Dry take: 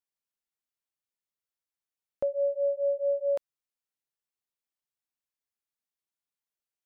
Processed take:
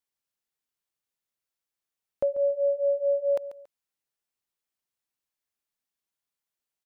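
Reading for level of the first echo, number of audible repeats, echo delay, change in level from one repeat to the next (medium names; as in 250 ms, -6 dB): -14.0 dB, 2, 140 ms, -10.5 dB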